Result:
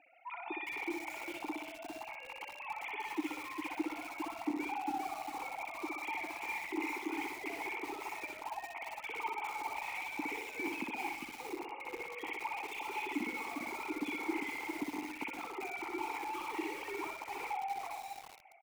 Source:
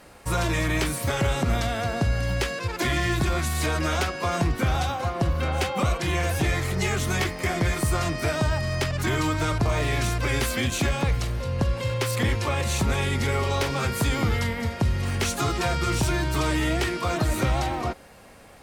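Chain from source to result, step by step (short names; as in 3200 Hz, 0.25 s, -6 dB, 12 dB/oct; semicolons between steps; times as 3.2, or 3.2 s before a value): sine-wave speech; limiter -18 dBFS, peak gain reduction 9.5 dB; compressor 2.5:1, threshold -29 dBFS, peak gain reduction 5.5 dB; vowel filter u; feedback echo 62 ms, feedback 47%, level -4 dB; reverb RT60 1.6 s, pre-delay 60 ms, DRR 19 dB; lo-fi delay 0.402 s, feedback 35%, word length 8-bit, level -4.5 dB; gain +2.5 dB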